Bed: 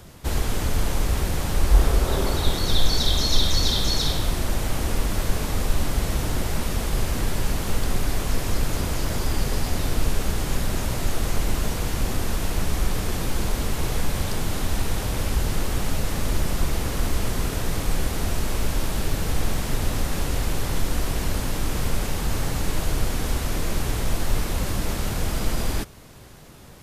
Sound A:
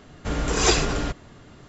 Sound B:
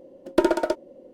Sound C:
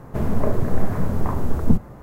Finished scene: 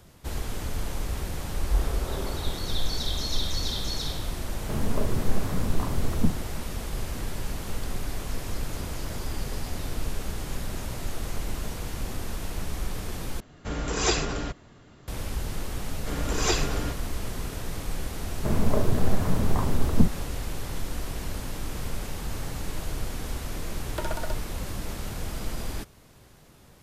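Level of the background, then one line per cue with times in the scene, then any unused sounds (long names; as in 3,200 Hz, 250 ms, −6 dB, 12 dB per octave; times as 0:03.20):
bed −8 dB
0:04.54: mix in C −6 dB + parametric band 650 Hz −2.5 dB
0:13.40: overwrite with A −5 dB
0:15.81: mix in A −6 dB
0:18.30: mix in C −2.5 dB
0:23.60: mix in B −6 dB + high-pass filter 810 Hz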